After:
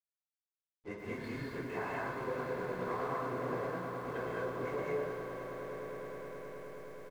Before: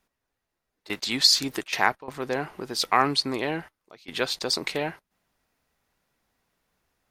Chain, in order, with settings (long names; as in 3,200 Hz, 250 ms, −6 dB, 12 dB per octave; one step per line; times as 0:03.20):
random phases in long frames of 100 ms
low-pass filter 1,600 Hz 24 dB per octave
comb filter 1.9 ms, depth 47%
downward compressor 16 to 1, threshold −35 dBFS, peak gain reduction 19 dB
slack as between gear wheels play −49 dBFS
echo that builds up and dies away 105 ms, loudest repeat 8, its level −14 dB
reverb whose tail is shaped and stops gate 250 ms rising, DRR −3 dB
feedback echo at a low word length 121 ms, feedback 80%, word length 9 bits, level −10.5 dB
level −4 dB